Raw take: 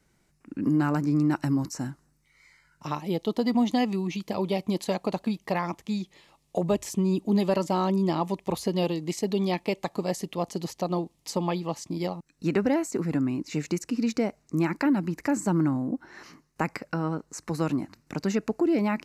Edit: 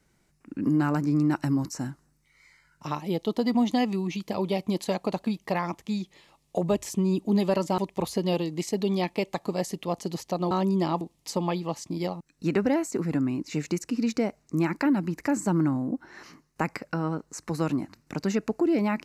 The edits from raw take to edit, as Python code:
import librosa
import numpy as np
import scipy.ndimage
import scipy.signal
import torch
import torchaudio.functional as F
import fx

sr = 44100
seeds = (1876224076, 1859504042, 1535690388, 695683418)

y = fx.edit(x, sr, fx.move(start_s=7.78, length_s=0.5, to_s=11.01), tone=tone)